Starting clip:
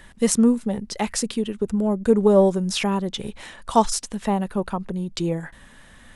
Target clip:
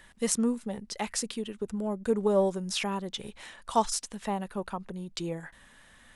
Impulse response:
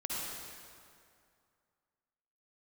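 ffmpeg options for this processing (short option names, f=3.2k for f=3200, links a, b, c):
-af "lowshelf=f=490:g=-6.5,volume=-5.5dB"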